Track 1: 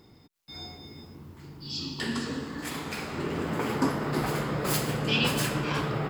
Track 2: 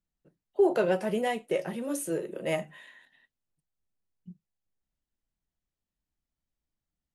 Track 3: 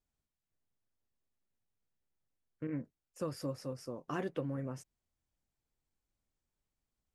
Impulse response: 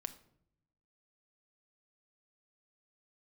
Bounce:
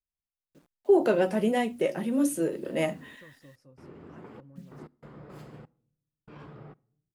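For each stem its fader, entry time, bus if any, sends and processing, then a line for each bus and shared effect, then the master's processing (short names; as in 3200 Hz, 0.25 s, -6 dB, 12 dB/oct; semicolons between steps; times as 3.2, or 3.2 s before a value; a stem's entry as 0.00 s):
-18.5 dB, 0.65 s, send -8 dB, LPF 1000 Hz 6 dB/oct; step gate "....xxxx..x.xxxx" 96 bpm -60 dB
+1.0 dB, 0.30 s, no send, bell 260 Hz +12.5 dB 0.44 oct; notches 60/120/180/240/300/360 Hz; bit-crush 11-bit
-19.0 dB, 0.00 s, send -13.5 dB, low shelf 150 Hz +9 dB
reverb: on, RT60 0.70 s, pre-delay 6 ms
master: dry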